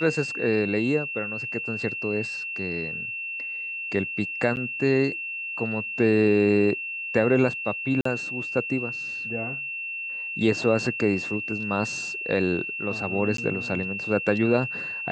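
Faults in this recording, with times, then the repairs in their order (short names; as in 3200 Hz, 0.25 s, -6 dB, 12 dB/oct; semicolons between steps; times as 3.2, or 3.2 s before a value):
tone 2700 Hz -30 dBFS
4.56–4.57 gap 9.3 ms
8.01–8.05 gap 44 ms
13.37–13.38 gap 13 ms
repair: notch 2700 Hz, Q 30; interpolate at 4.56, 9.3 ms; interpolate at 8.01, 44 ms; interpolate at 13.37, 13 ms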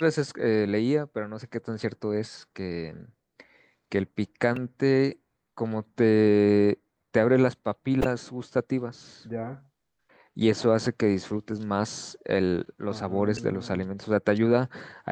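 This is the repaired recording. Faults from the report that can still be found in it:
none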